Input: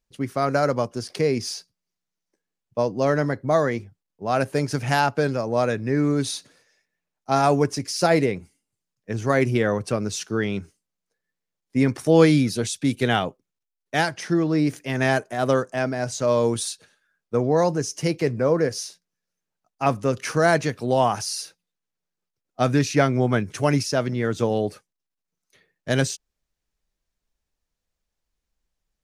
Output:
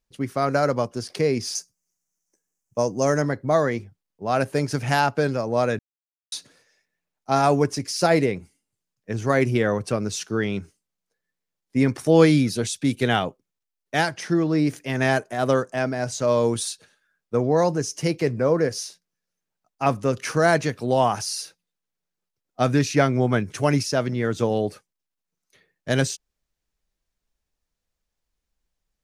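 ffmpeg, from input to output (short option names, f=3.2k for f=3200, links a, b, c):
-filter_complex "[0:a]asettb=1/sr,asplit=3[a][b][c];[a]atrim=end=1.554[d];[b]atrim=start=1.55:end=3.22,asetpts=PTS-STARTPTS,afade=t=in:d=0.004:c=qsin,afade=t=out:st=1.666:d=0.004:c=qsin,highshelf=f=5.1k:t=q:w=3:g=8[e];[c]atrim=start=3.216[f];[d][e]acrossfade=d=0.004:c1=hsin:c2=qsin[g];[g][f]acrossfade=d=0.004:c1=qsin:c2=hsin,asplit=3[h][i][j];[h]atrim=end=5.79,asetpts=PTS-STARTPTS,afade=t=out:st=5.786:d=0.004:c=hsin[k];[i]atrim=start=5.79:end=6.32,asetpts=PTS-STARTPTS,volume=0[l];[j]atrim=start=6.32,asetpts=PTS-STARTPTS,afade=t=in:d=0.004:c=hsin[m];[k][l][m]concat=n=3:v=0:a=1"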